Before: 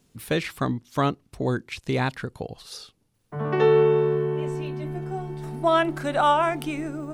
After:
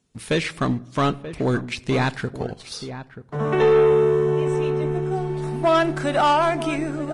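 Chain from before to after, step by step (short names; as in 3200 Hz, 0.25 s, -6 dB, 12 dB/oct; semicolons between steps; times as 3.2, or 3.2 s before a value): sample leveller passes 2; 3.35–5.16 Butterworth band-stop 4600 Hz, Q 5.1; outdoor echo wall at 160 m, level -12 dB; reverb RT60 0.90 s, pre-delay 5 ms, DRR 17.5 dB; gain -3 dB; Vorbis 32 kbps 22050 Hz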